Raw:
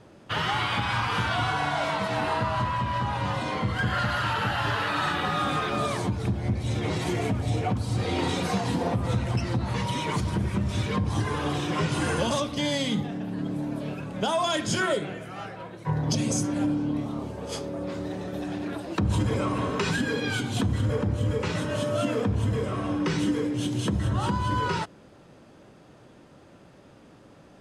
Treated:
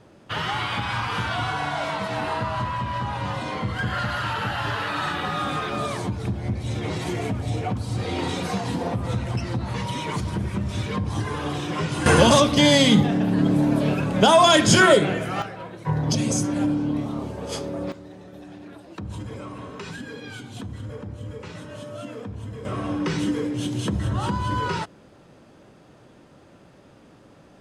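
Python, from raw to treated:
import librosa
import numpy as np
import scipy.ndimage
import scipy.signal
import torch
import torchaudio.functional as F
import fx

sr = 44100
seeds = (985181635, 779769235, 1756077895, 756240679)

y = fx.gain(x, sr, db=fx.steps((0.0, 0.0), (12.06, 11.0), (15.42, 3.0), (17.92, -9.5), (22.65, 1.0)))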